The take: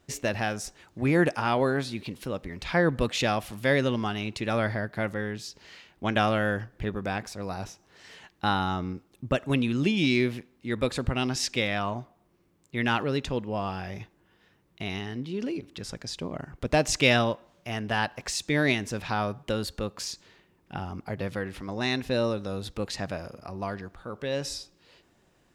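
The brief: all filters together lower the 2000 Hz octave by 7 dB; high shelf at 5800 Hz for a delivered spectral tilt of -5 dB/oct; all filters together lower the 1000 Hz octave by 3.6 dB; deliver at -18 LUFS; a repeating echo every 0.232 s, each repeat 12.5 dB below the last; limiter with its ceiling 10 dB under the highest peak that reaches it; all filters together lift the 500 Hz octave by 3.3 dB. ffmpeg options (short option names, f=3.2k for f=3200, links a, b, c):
-af "equalizer=f=500:t=o:g=6,equalizer=f=1k:t=o:g=-6.5,equalizer=f=2k:t=o:g=-8,highshelf=f=5.8k:g=4.5,alimiter=limit=-18.5dB:level=0:latency=1,aecho=1:1:232|464|696:0.237|0.0569|0.0137,volume=12.5dB"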